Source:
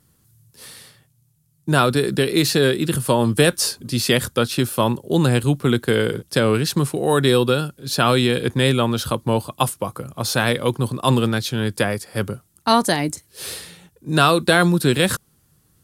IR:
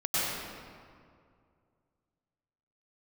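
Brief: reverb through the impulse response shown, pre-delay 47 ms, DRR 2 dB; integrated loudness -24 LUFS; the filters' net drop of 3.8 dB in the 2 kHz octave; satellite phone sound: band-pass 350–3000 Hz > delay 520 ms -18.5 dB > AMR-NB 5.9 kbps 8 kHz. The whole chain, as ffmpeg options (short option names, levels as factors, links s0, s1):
-filter_complex "[0:a]equalizer=f=2000:t=o:g=-4.5,asplit=2[s0][s1];[1:a]atrim=start_sample=2205,adelay=47[s2];[s1][s2]afir=irnorm=-1:irlink=0,volume=0.224[s3];[s0][s3]amix=inputs=2:normalize=0,highpass=350,lowpass=3000,aecho=1:1:520:0.119,volume=0.944" -ar 8000 -c:a libopencore_amrnb -b:a 5900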